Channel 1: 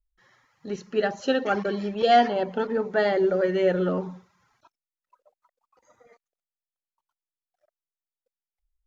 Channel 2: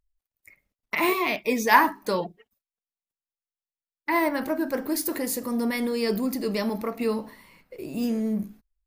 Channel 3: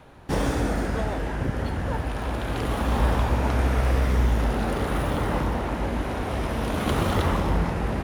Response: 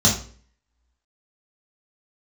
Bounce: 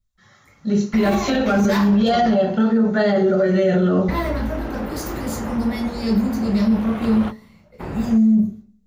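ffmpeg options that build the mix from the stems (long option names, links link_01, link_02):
-filter_complex "[0:a]volume=2dB,asplit=2[link_01][link_02];[link_02]volume=-12.5dB[link_03];[1:a]lowshelf=frequency=240:gain=4,aeval=exprs='0.631*(cos(1*acos(clip(val(0)/0.631,-1,1)))-cos(1*PI/2))+0.126*(cos(3*acos(clip(val(0)/0.631,-1,1)))-cos(3*PI/2))+0.0178*(cos(6*acos(clip(val(0)/0.631,-1,1)))-cos(6*PI/2))':channel_layout=same,volume=-2dB,asplit=3[link_04][link_05][link_06];[link_05]volume=-11dB[link_07];[2:a]bass=frequency=250:gain=-2,treble=frequency=4000:gain=-12,adelay=150,volume=-3.5dB[link_08];[link_06]apad=whole_len=360881[link_09];[link_08][link_09]sidechaingate=range=-33dB:threshold=-46dB:ratio=16:detection=peak[link_10];[3:a]atrim=start_sample=2205[link_11];[link_03][link_07]amix=inputs=2:normalize=0[link_12];[link_12][link_11]afir=irnorm=-1:irlink=0[link_13];[link_01][link_04][link_10][link_13]amix=inputs=4:normalize=0,alimiter=limit=-10dB:level=0:latency=1:release=31"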